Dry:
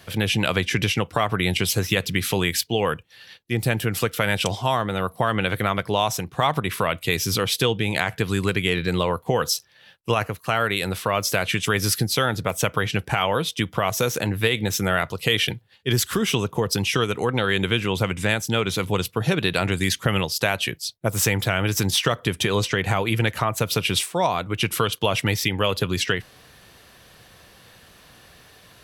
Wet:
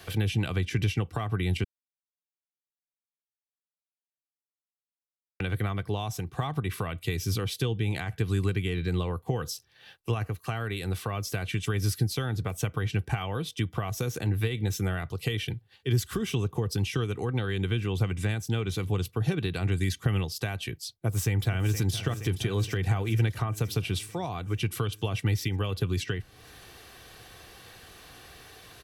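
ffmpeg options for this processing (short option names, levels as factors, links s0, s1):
-filter_complex "[0:a]asplit=2[s0][s1];[s1]afade=t=in:st=21:d=0.01,afade=t=out:st=21.93:d=0.01,aecho=0:1:470|940|1410|1880|2350|2820|3290|3760|4230|4700:0.266073|0.186251|0.130376|0.0912629|0.063884|0.0447188|0.0313032|0.0219122|0.0153386|0.010737[s2];[s0][s2]amix=inputs=2:normalize=0,asplit=3[s3][s4][s5];[s3]atrim=end=1.64,asetpts=PTS-STARTPTS,afade=t=out:st=1.636:d=0.004:c=hsin[s6];[s4]atrim=start=1.64:end=5.4,asetpts=PTS-STARTPTS,volume=0[s7];[s5]atrim=start=5.4,asetpts=PTS-STARTPTS,afade=t=in:d=0.004:c=hsin[s8];[s6][s7][s8]concat=n=3:v=0:a=1,aecho=1:1:2.6:0.41,acrossover=split=230[s9][s10];[s10]acompressor=threshold=0.01:ratio=2.5[s11];[s9][s11]amix=inputs=2:normalize=0"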